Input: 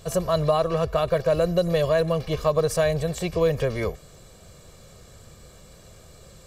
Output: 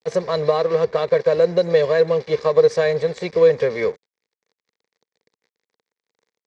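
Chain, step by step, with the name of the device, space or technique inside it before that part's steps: blown loudspeaker (crossover distortion -39.5 dBFS; cabinet simulation 230–5400 Hz, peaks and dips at 300 Hz -6 dB, 460 Hz +8 dB, 670 Hz -7 dB, 1.3 kHz -7 dB, 2 kHz +6 dB, 2.9 kHz -9 dB); trim +5 dB

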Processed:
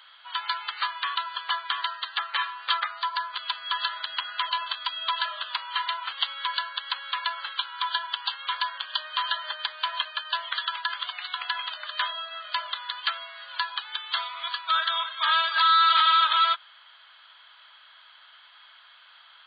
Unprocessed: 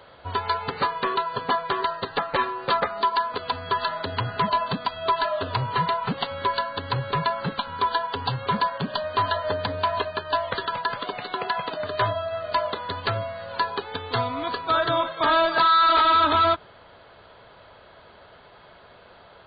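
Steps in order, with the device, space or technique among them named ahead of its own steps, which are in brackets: 2.90–3.33 s: dynamic bell 3.1 kHz, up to -6 dB, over -46 dBFS, Q 1.9; headphones lying on a table (high-pass 1.2 kHz 24 dB/octave; peaking EQ 3.2 kHz +9.5 dB 0.23 oct)

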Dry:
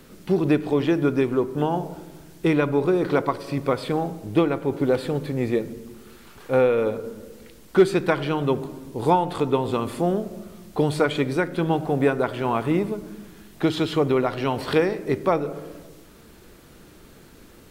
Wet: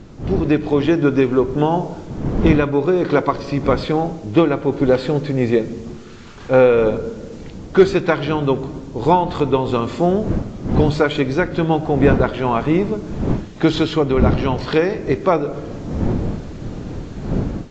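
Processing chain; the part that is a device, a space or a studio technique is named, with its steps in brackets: smartphone video outdoors (wind noise -30 dBFS; level rider gain up to 8 dB; AAC 48 kbps 16 kHz)

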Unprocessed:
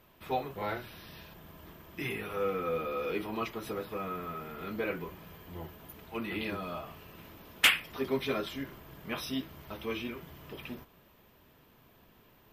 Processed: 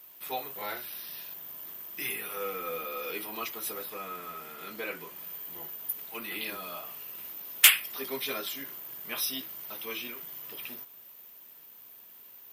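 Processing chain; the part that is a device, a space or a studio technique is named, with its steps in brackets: turntable without a phono preamp (RIAA curve recording; white noise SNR 34 dB); high-pass 100 Hz 24 dB/octave; 3.90–5.16 s: low-pass 12 kHz 12 dB/octave; treble shelf 6.4 kHz +4.5 dB; trim -2 dB

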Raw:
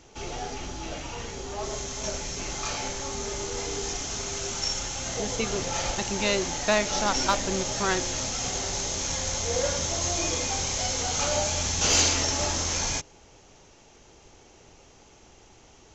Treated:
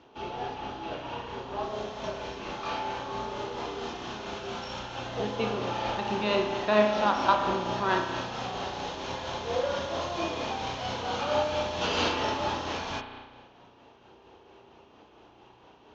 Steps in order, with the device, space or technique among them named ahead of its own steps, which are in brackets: combo amplifier with spring reverb and tremolo (spring tank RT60 1.4 s, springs 33 ms, chirp 35 ms, DRR 2 dB; tremolo 4.4 Hz, depth 33%; cabinet simulation 99–3600 Hz, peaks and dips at 100 Hz -7 dB, 160 Hz -5 dB, 990 Hz +5 dB, 2.1 kHz -8 dB)

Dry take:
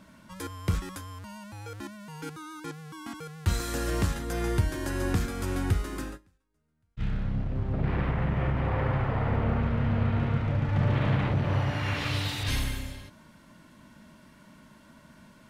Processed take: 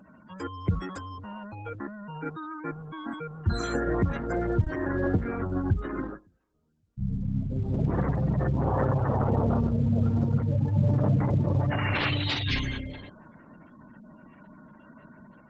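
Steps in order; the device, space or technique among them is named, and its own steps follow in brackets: noise-suppressed video call (high-pass 140 Hz 6 dB/octave; spectral gate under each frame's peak -15 dB strong; level rider gain up to 3 dB; trim +3 dB; Opus 12 kbps 48 kHz)

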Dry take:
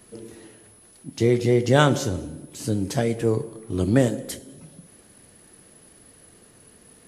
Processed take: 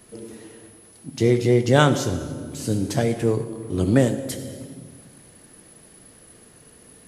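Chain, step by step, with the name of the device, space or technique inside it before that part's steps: compressed reverb return (on a send at -4.5 dB: reverberation RT60 1.3 s, pre-delay 57 ms + compression, threshold -25 dBFS, peak gain reduction 12 dB); on the sum: trim +1 dB

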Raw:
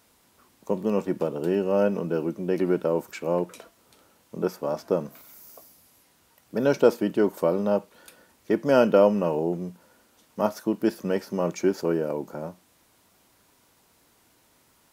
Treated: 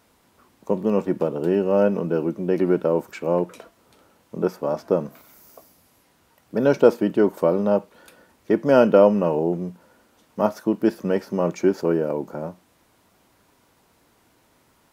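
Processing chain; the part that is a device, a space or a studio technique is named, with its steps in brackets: behind a face mask (treble shelf 3 kHz -7.5 dB); trim +4 dB

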